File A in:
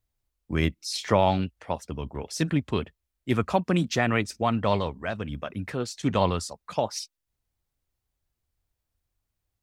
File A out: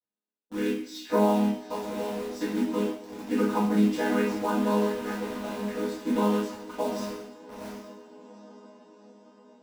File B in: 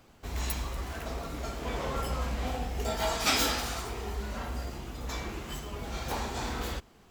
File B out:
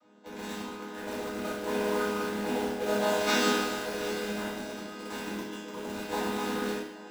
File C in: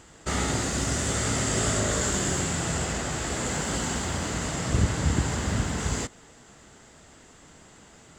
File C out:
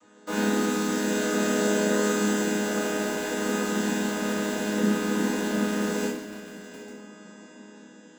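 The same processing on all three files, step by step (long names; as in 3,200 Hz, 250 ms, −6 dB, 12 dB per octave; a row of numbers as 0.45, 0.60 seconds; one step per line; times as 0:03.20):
channel vocoder with a chord as carrier minor triad, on G#3
low-shelf EQ 220 Hz −10 dB
feedback delay with all-pass diffusion 787 ms, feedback 57%, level −10.5 dB
in parallel at −4.5 dB: bit reduction 6 bits
on the sum: coupled-rooms reverb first 0.6 s, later 2.1 s, from −24 dB, DRR −8 dB
normalise the peak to −12 dBFS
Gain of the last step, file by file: −9.5, −5.0, −6.5 decibels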